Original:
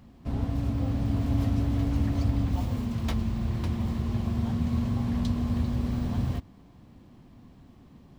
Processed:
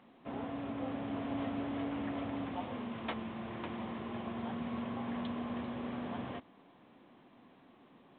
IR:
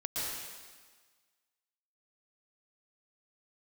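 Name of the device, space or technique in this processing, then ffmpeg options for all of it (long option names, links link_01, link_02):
telephone: -af "highpass=380,lowpass=3300" -ar 8000 -c:a pcm_alaw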